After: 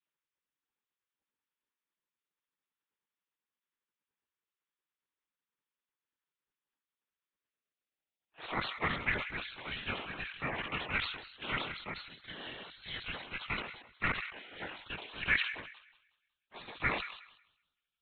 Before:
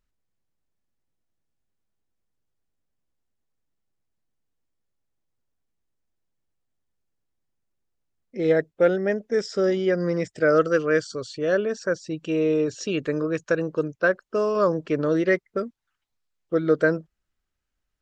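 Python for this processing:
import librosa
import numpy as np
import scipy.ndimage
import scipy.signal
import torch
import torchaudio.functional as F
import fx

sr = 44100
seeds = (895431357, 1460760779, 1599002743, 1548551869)

p1 = fx.filter_sweep_highpass(x, sr, from_hz=640.0, to_hz=2000.0, start_s=7.21, end_s=9.16, q=6.3)
p2 = fx.lpc_vocoder(p1, sr, seeds[0], excitation='whisper', order=8)
p3 = p2 + fx.echo_wet_highpass(p2, sr, ms=184, feedback_pct=31, hz=2600.0, wet_db=-9, dry=0)
p4 = fx.spec_gate(p3, sr, threshold_db=-15, keep='weak')
y = fx.sustainer(p4, sr, db_per_s=73.0)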